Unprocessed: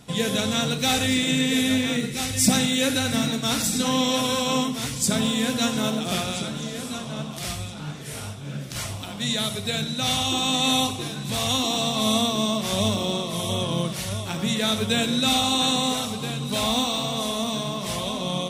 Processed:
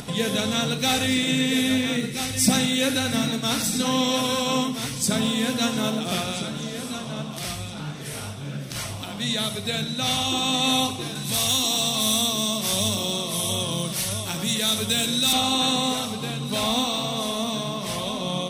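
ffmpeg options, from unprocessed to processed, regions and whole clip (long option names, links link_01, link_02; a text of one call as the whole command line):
ffmpeg -i in.wav -filter_complex "[0:a]asettb=1/sr,asplit=3[link_01][link_02][link_03];[link_01]atrim=end=11.154[link_04];[link_02]atrim=start=11.15:end=15.33,asetpts=PTS-STARTPTS,afade=type=in:duration=0.004:curve=qsin,afade=type=out:start_time=4.176:duration=0.004:curve=qsin,highshelf=frequency=5000:gain=10.5,acrossover=split=130|3000[link_05][link_06][link_07];[link_06]acompressor=threshold=-28dB:ratio=2:attack=3.2:release=140:knee=2.83:detection=peak[link_08];[link_05][link_08][link_07]amix=inputs=3:normalize=0,asoftclip=type=hard:threshold=-14dB[link_09];[link_03]atrim=start=15.326[link_10];[link_04][link_09]acrossfade=duration=0.004:curve1=hsin:curve2=qsin[link_11];[link_11][link_10]acrossfade=duration=0.004:curve1=qsin:curve2=hsin,equalizer=frequency=70:width=2.2:gain=-7,bandreject=frequency=7100:width=11,acompressor=mode=upward:threshold=-28dB:ratio=2.5" out.wav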